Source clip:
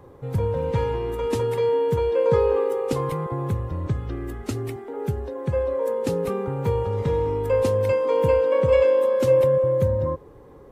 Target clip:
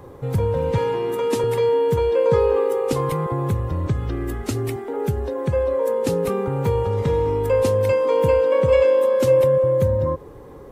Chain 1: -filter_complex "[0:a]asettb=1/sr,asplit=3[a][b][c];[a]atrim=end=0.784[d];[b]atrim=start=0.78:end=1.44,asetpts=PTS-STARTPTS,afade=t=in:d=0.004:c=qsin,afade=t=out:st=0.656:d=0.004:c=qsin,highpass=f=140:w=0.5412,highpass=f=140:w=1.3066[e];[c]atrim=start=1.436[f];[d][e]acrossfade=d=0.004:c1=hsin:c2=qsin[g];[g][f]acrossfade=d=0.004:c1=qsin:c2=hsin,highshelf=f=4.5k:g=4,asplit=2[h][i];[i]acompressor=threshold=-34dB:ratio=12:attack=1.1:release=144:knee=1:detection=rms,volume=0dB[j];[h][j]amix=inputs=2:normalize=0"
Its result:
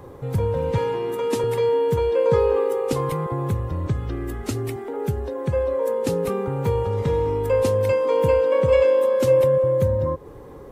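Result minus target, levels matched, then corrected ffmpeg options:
compressor: peak gain reduction +8 dB
-filter_complex "[0:a]asettb=1/sr,asplit=3[a][b][c];[a]atrim=end=0.784[d];[b]atrim=start=0.78:end=1.44,asetpts=PTS-STARTPTS,afade=t=in:d=0.004:c=qsin,afade=t=out:st=0.656:d=0.004:c=qsin,highpass=f=140:w=0.5412,highpass=f=140:w=1.3066[e];[c]atrim=start=1.436[f];[d][e]acrossfade=d=0.004:c1=hsin:c2=qsin[g];[g][f]acrossfade=d=0.004:c1=qsin:c2=hsin,highshelf=f=4.5k:g=4,asplit=2[h][i];[i]acompressor=threshold=-25.5dB:ratio=12:attack=1.1:release=144:knee=1:detection=rms,volume=0dB[j];[h][j]amix=inputs=2:normalize=0"

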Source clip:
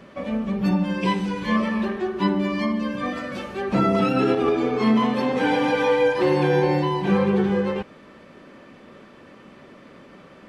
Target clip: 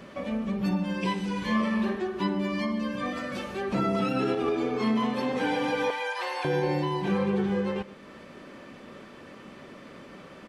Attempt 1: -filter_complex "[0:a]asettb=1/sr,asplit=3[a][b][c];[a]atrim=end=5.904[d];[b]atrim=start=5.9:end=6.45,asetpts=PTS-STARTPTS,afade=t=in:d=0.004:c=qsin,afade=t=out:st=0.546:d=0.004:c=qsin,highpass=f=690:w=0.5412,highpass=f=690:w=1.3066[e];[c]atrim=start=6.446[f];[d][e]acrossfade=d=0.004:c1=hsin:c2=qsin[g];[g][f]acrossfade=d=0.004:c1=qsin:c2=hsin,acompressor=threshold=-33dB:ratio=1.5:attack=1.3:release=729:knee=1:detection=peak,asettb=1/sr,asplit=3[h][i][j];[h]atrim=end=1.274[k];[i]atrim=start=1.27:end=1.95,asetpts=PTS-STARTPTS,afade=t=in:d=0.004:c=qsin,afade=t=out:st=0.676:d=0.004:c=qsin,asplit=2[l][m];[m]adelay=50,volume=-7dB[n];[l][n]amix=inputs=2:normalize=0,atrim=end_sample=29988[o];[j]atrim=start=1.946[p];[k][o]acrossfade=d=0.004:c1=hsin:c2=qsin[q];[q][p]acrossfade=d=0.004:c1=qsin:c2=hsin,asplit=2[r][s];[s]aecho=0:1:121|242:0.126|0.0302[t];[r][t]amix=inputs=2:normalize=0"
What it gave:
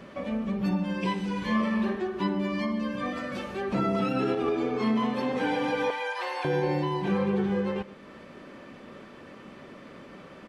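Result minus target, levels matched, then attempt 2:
8000 Hz band -3.5 dB
-filter_complex "[0:a]asettb=1/sr,asplit=3[a][b][c];[a]atrim=end=5.904[d];[b]atrim=start=5.9:end=6.45,asetpts=PTS-STARTPTS,afade=t=in:d=0.004:c=qsin,afade=t=out:st=0.546:d=0.004:c=qsin,highpass=f=690:w=0.5412,highpass=f=690:w=1.3066[e];[c]atrim=start=6.446[f];[d][e]acrossfade=d=0.004:c1=hsin:c2=qsin[g];[g][f]acrossfade=d=0.004:c1=qsin:c2=hsin,acompressor=threshold=-33dB:ratio=1.5:attack=1.3:release=729:knee=1:detection=peak,highshelf=f=4.3k:g=5,asettb=1/sr,asplit=3[h][i][j];[h]atrim=end=1.274[k];[i]atrim=start=1.27:end=1.95,asetpts=PTS-STARTPTS,afade=t=in:d=0.004:c=qsin,afade=t=out:st=0.676:d=0.004:c=qsin,asplit=2[l][m];[m]adelay=50,volume=-7dB[n];[l][n]amix=inputs=2:normalize=0,atrim=end_sample=29988[o];[j]atrim=start=1.946[p];[k][o]acrossfade=d=0.004:c1=hsin:c2=qsin[q];[q][p]acrossfade=d=0.004:c1=qsin:c2=hsin,asplit=2[r][s];[s]aecho=0:1:121|242:0.126|0.0302[t];[r][t]amix=inputs=2:normalize=0"

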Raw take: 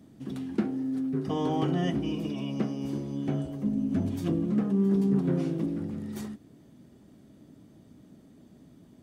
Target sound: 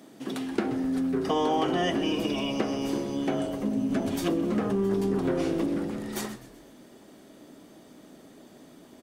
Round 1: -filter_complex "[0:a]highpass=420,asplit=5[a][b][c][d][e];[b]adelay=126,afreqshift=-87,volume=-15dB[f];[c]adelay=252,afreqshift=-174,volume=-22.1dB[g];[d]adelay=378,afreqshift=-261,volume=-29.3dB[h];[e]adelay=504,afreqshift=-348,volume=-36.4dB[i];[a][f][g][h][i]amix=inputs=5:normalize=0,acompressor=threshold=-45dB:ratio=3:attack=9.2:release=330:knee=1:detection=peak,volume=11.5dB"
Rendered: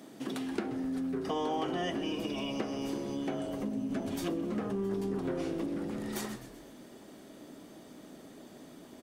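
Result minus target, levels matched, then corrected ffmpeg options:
compressor: peak gain reduction +7.5 dB
-filter_complex "[0:a]highpass=420,asplit=5[a][b][c][d][e];[b]adelay=126,afreqshift=-87,volume=-15dB[f];[c]adelay=252,afreqshift=-174,volume=-22.1dB[g];[d]adelay=378,afreqshift=-261,volume=-29.3dB[h];[e]adelay=504,afreqshift=-348,volume=-36.4dB[i];[a][f][g][h][i]amix=inputs=5:normalize=0,acompressor=threshold=-34dB:ratio=3:attack=9.2:release=330:knee=1:detection=peak,volume=11.5dB"

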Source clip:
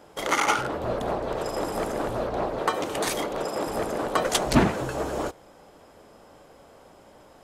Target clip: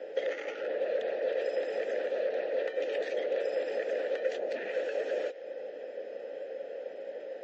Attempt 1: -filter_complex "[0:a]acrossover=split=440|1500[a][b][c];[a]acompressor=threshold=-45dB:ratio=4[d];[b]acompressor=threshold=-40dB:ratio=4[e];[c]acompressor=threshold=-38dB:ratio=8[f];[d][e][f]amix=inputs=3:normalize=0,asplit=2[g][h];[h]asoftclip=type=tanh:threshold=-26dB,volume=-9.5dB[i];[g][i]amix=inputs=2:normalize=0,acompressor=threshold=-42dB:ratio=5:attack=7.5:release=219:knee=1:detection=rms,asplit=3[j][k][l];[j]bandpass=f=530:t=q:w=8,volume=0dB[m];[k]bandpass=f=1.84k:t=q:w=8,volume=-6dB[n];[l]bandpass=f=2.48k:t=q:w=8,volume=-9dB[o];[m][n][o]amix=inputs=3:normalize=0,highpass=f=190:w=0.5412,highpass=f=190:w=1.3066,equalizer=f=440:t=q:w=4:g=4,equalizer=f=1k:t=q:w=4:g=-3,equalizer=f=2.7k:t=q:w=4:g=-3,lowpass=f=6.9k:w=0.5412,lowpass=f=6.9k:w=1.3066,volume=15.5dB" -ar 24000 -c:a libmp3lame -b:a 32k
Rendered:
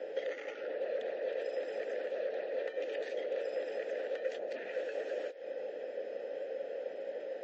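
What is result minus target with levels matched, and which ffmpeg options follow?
compressor: peak gain reduction +5 dB
-filter_complex "[0:a]acrossover=split=440|1500[a][b][c];[a]acompressor=threshold=-45dB:ratio=4[d];[b]acompressor=threshold=-40dB:ratio=4[e];[c]acompressor=threshold=-38dB:ratio=8[f];[d][e][f]amix=inputs=3:normalize=0,asplit=2[g][h];[h]asoftclip=type=tanh:threshold=-26dB,volume=-9.5dB[i];[g][i]amix=inputs=2:normalize=0,acompressor=threshold=-35.5dB:ratio=5:attack=7.5:release=219:knee=1:detection=rms,asplit=3[j][k][l];[j]bandpass=f=530:t=q:w=8,volume=0dB[m];[k]bandpass=f=1.84k:t=q:w=8,volume=-6dB[n];[l]bandpass=f=2.48k:t=q:w=8,volume=-9dB[o];[m][n][o]amix=inputs=3:normalize=0,highpass=f=190:w=0.5412,highpass=f=190:w=1.3066,equalizer=f=440:t=q:w=4:g=4,equalizer=f=1k:t=q:w=4:g=-3,equalizer=f=2.7k:t=q:w=4:g=-3,lowpass=f=6.9k:w=0.5412,lowpass=f=6.9k:w=1.3066,volume=15.5dB" -ar 24000 -c:a libmp3lame -b:a 32k

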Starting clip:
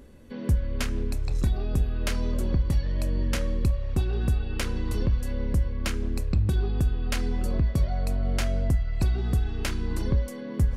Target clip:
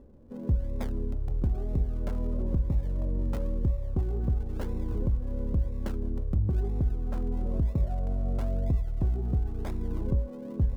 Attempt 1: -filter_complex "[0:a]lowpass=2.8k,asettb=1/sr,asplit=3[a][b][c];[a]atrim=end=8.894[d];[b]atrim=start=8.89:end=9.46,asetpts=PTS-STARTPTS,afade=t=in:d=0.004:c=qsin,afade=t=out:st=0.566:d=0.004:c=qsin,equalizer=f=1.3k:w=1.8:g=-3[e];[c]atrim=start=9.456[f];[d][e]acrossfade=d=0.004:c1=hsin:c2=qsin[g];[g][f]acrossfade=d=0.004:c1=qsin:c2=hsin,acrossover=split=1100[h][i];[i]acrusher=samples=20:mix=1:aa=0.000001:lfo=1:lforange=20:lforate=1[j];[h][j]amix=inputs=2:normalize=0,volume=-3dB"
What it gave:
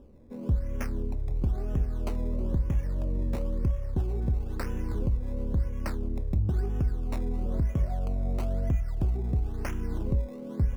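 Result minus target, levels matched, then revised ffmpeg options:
decimation with a swept rate: distortion -15 dB
-filter_complex "[0:a]lowpass=2.8k,asettb=1/sr,asplit=3[a][b][c];[a]atrim=end=8.894[d];[b]atrim=start=8.89:end=9.46,asetpts=PTS-STARTPTS,afade=t=in:d=0.004:c=qsin,afade=t=out:st=0.566:d=0.004:c=qsin,equalizer=f=1.3k:w=1.8:g=-3[e];[c]atrim=start=9.456[f];[d][e]acrossfade=d=0.004:c1=hsin:c2=qsin[g];[g][f]acrossfade=d=0.004:c1=qsin:c2=hsin,acrossover=split=1100[h][i];[i]acrusher=samples=56:mix=1:aa=0.000001:lfo=1:lforange=56:lforate=1[j];[h][j]amix=inputs=2:normalize=0,volume=-3dB"

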